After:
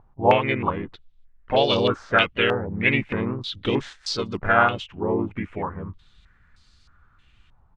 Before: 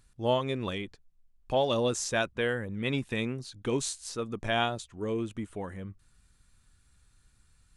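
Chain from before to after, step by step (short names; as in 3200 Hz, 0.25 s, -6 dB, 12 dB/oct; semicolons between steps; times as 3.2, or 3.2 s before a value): harmoniser -3 st -2 dB, +3 st -16 dB; stepped low-pass 3.2 Hz 860–4600 Hz; gain +4 dB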